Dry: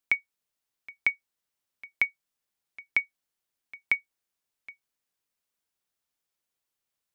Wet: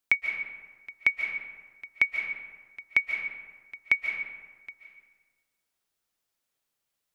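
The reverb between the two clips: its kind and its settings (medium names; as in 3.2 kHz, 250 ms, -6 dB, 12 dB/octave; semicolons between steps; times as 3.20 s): algorithmic reverb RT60 1.4 s, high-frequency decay 0.55×, pre-delay 105 ms, DRR 3 dB; trim +2 dB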